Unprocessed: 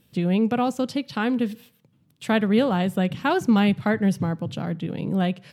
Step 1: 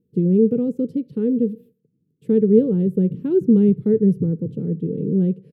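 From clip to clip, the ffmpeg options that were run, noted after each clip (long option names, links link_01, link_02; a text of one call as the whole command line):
ffmpeg -i in.wav -af "agate=range=-9dB:threshold=-51dB:ratio=16:detection=peak,firequalizer=gain_entry='entry(110,0);entry(160,7);entry(300,5);entry(440,14);entry(670,-26);entry(2100,-24);entry(5800,-26);entry(11000,-16)':delay=0.05:min_phase=1,volume=-2dB" out.wav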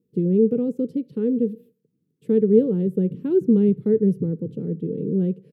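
ffmpeg -i in.wav -af "highpass=frequency=210:poles=1" out.wav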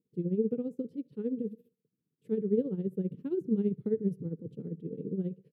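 ffmpeg -i in.wav -af "tremolo=f=15:d=0.73,volume=-8.5dB" out.wav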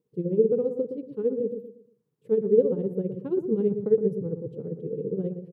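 ffmpeg -i in.wav -filter_complex "[0:a]equalizer=frequency=125:width_type=o:width=1:gain=6,equalizer=frequency=250:width_type=o:width=1:gain=-4,equalizer=frequency=500:width_type=o:width=1:gain=11,equalizer=frequency=1000:width_type=o:width=1:gain=10,asplit=2[link_01][link_02];[link_02]adelay=117,lowpass=frequency=800:poles=1,volume=-6.5dB,asplit=2[link_03][link_04];[link_04]adelay=117,lowpass=frequency=800:poles=1,volume=0.36,asplit=2[link_05][link_06];[link_06]adelay=117,lowpass=frequency=800:poles=1,volume=0.36,asplit=2[link_07][link_08];[link_08]adelay=117,lowpass=frequency=800:poles=1,volume=0.36[link_09];[link_03][link_05][link_07][link_09]amix=inputs=4:normalize=0[link_10];[link_01][link_10]amix=inputs=2:normalize=0" out.wav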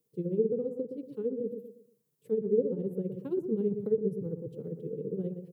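ffmpeg -i in.wav -filter_complex "[0:a]acrossover=split=230|510[link_01][link_02][link_03];[link_03]acompressor=threshold=-43dB:ratio=6[link_04];[link_01][link_02][link_04]amix=inputs=3:normalize=0,crystalizer=i=4:c=0,volume=-4.5dB" out.wav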